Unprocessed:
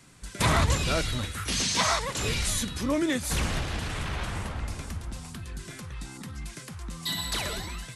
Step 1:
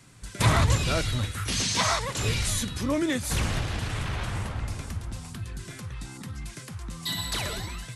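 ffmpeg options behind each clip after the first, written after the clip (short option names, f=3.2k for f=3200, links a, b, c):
-af "equalizer=f=110:w=3.8:g=8.5"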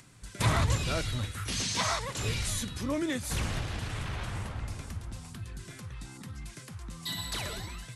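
-af "acompressor=mode=upward:threshold=-47dB:ratio=2.5,volume=-5dB"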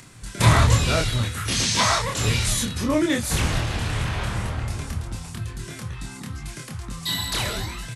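-filter_complex "[0:a]asplit=2[a][b];[b]adelay=26,volume=-3dB[c];[a][c]amix=inputs=2:normalize=0,volume=8dB"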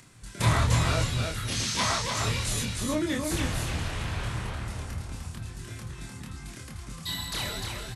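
-af "aecho=1:1:301:0.596,volume=-7.5dB"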